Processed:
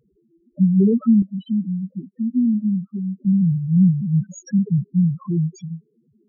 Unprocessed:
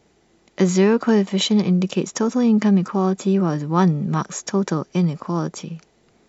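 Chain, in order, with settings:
each half-wave held at its own peak
spectral peaks only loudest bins 2
0:01.22–0:03.25: formant resonators in series i

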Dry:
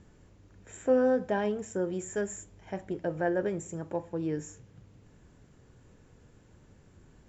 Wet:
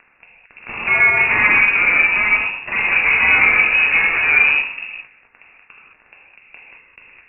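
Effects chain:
fuzz pedal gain 48 dB, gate −49 dBFS
reverb whose tail is shaped and stops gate 240 ms flat, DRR −4.5 dB
voice inversion scrambler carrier 2,700 Hz
level −5 dB

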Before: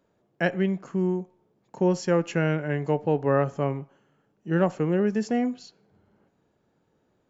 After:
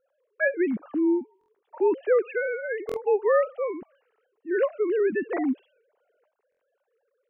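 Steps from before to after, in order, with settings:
three sine waves on the formant tracks
buffer that repeats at 0:01.39/0:02.87/0:06.50, samples 1,024, times 3

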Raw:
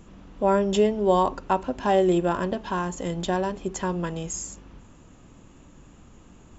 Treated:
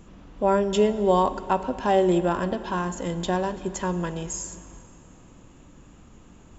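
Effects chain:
dense smooth reverb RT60 2.9 s, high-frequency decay 0.8×, DRR 13 dB

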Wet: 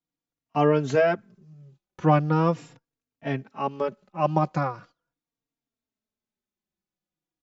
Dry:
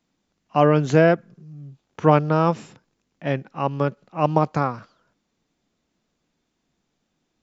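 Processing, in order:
noise gate −45 dBFS, range −15 dB
barber-pole flanger 3.7 ms −0.4 Hz
level −1 dB

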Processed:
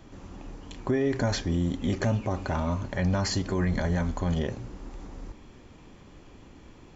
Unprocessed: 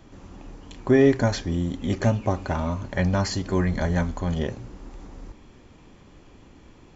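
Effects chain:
brickwall limiter −17.5 dBFS, peak gain reduction 10.5 dB

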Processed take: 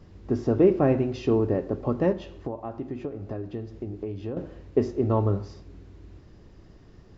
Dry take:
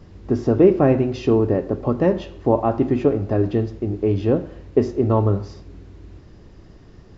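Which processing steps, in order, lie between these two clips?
0:02.12–0:04.37: downward compressor 6 to 1, threshold −25 dBFS, peak gain reduction 13.5 dB
level −5.5 dB

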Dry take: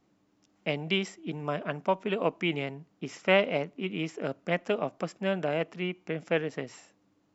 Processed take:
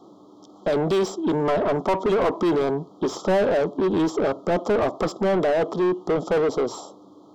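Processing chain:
Chebyshev band-stop filter 1,300–3,200 Hz, order 5
parametric band 370 Hz +6 dB 0.63 octaves
mid-hump overdrive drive 33 dB, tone 1,300 Hz, clips at −12.5 dBFS

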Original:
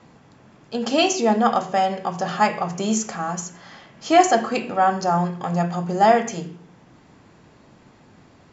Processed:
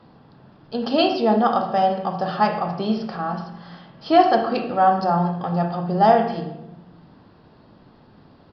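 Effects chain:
parametric band 2,200 Hz −10 dB 0.54 octaves
on a send at −8 dB: convolution reverb RT60 0.95 s, pre-delay 37 ms
on the sum: downsampling to 11,025 Hz

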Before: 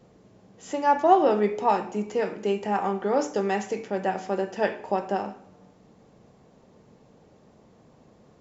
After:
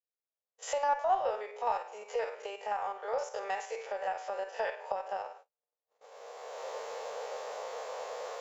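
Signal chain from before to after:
spectrum averaged block by block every 50 ms
camcorder AGC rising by 19 dB per second
elliptic high-pass filter 480 Hz, stop band 40 dB
noise gate −44 dBFS, range −42 dB
harmonic generator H 4 −33 dB, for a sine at −9.5 dBFS
level −7.5 dB

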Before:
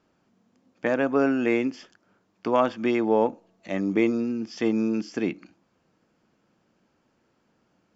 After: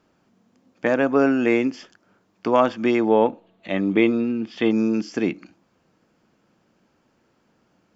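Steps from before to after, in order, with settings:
0:03.10–0:04.71: high shelf with overshoot 4,400 Hz −7.5 dB, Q 3
level +4 dB

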